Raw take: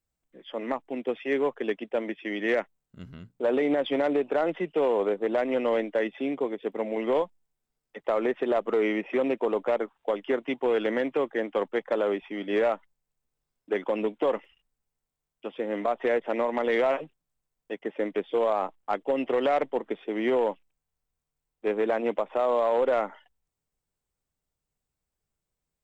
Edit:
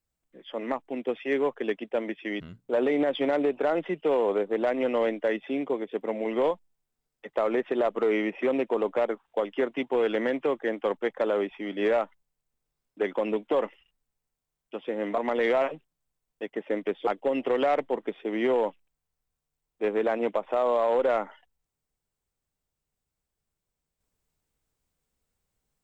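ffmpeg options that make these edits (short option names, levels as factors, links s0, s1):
-filter_complex "[0:a]asplit=4[s0][s1][s2][s3];[s0]atrim=end=2.402[s4];[s1]atrim=start=3.108:end=15.892[s5];[s2]atrim=start=16.468:end=18.362[s6];[s3]atrim=start=18.898[s7];[s4][s5]acrossfade=d=0.004:c1=hsin:c2=hsin[s8];[s8][s6]acrossfade=d=0.004:c1=hsin:c2=hsin[s9];[s9][s7]acrossfade=d=0.004:c1=hsin:c2=hsin"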